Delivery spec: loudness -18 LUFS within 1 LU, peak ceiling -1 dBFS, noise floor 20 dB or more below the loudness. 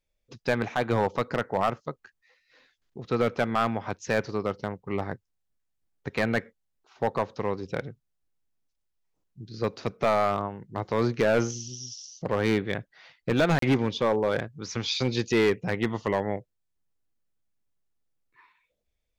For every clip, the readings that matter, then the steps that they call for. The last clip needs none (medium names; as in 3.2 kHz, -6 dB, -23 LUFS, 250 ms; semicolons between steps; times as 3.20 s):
clipped samples 0.9%; clipping level -16.5 dBFS; dropouts 1; longest dropout 33 ms; loudness -28.0 LUFS; peak level -16.5 dBFS; loudness target -18.0 LUFS
-> clip repair -16.5 dBFS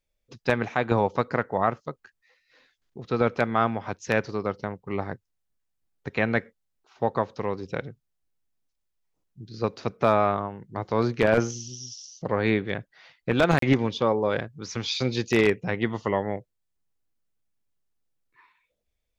clipped samples 0.0%; dropouts 1; longest dropout 33 ms
-> interpolate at 13.59 s, 33 ms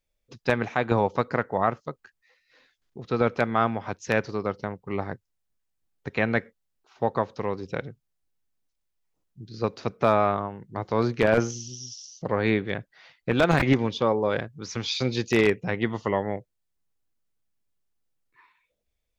dropouts 0; loudness -26.5 LUFS; peak level -7.5 dBFS; loudness target -18.0 LUFS
-> trim +8.5 dB; peak limiter -1 dBFS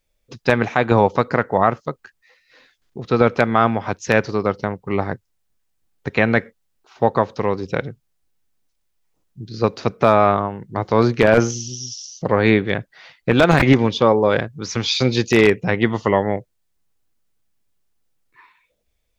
loudness -18.5 LUFS; peak level -1.0 dBFS; noise floor -70 dBFS